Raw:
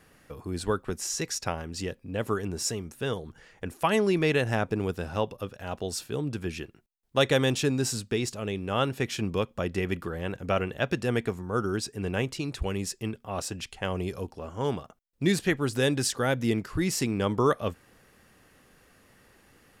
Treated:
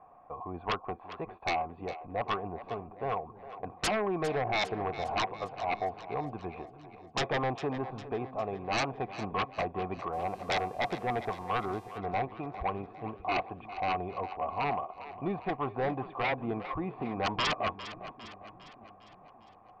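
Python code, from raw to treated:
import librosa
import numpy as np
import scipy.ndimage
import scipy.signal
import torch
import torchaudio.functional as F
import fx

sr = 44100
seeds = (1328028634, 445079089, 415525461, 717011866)

y = fx.formant_cascade(x, sr, vowel='a')
y = fx.fold_sine(y, sr, drive_db=19, ceiling_db=-21.0)
y = fx.echo_split(y, sr, split_hz=350.0, low_ms=582, high_ms=404, feedback_pct=52, wet_db=-13.5)
y = fx.dmg_buzz(y, sr, base_hz=400.0, harmonics=34, level_db=-57.0, tilt_db=-4, odd_only=False, at=(10.12, 11.97), fade=0.02)
y = y * librosa.db_to_amplitude(-4.5)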